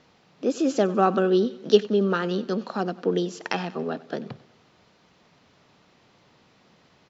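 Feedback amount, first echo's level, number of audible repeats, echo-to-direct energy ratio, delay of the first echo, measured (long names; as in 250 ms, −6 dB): 54%, −20.0 dB, 3, −18.5 dB, 94 ms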